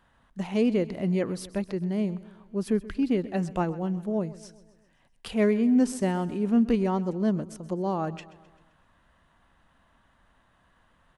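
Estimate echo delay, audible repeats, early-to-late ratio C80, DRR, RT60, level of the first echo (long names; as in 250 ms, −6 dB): 130 ms, 4, no reverb audible, no reverb audible, no reverb audible, −18.0 dB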